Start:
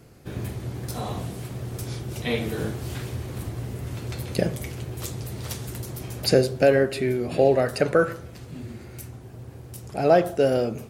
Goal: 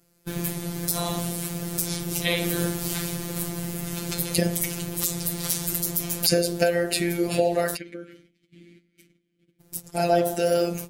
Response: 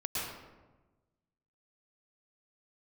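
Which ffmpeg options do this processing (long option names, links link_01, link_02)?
-filter_complex "[0:a]agate=range=-18dB:threshold=-37dB:ratio=16:detection=peak,bandreject=frequency=75.73:width_type=h:width=4,bandreject=frequency=151.46:width_type=h:width=4,bandreject=frequency=227.19:width_type=h:width=4,bandreject=frequency=302.92:width_type=h:width=4,bandreject=frequency=378.65:width_type=h:width=4,bandreject=frequency=454.38:width_type=h:width=4,bandreject=frequency=530.11:width_type=h:width=4,bandreject=frequency=605.84:width_type=h:width=4,bandreject=frequency=681.57:width_type=h:width=4,bandreject=frequency=757.3:width_type=h:width=4,bandreject=frequency=833.03:width_type=h:width=4,bandreject=frequency=908.76:width_type=h:width=4,bandreject=frequency=984.49:width_type=h:width=4,bandreject=frequency=1060.22:width_type=h:width=4,bandreject=frequency=1135.95:width_type=h:width=4,acompressor=threshold=-21dB:ratio=6,asplit=3[link_01][link_02][link_03];[link_01]afade=type=out:start_time=7.75:duration=0.02[link_04];[link_02]asplit=3[link_05][link_06][link_07];[link_05]bandpass=frequency=270:width_type=q:width=8,volume=0dB[link_08];[link_06]bandpass=frequency=2290:width_type=q:width=8,volume=-6dB[link_09];[link_07]bandpass=frequency=3010:width_type=q:width=8,volume=-9dB[link_10];[link_08][link_09][link_10]amix=inputs=3:normalize=0,afade=type=in:start_time=7.75:duration=0.02,afade=type=out:start_time=9.59:duration=0.02[link_11];[link_03]afade=type=in:start_time=9.59:duration=0.02[link_12];[link_04][link_11][link_12]amix=inputs=3:normalize=0,crystalizer=i=2.5:c=0,afftfilt=real='hypot(re,im)*cos(PI*b)':imag='0':win_size=1024:overlap=0.75,aeval=exprs='0.708*(cos(1*acos(clip(val(0)/0.708,-1,1)))-cos(1*PI/2))+0.0224*(cos(4*acos(clip(val(0)/0.708,-1,1)))-cos(4*PI/2))':channel_layout=same,alimiter=level_in=7.5dB:limit=-1dB:release=50:level=0:latency=1,volume=-1dB"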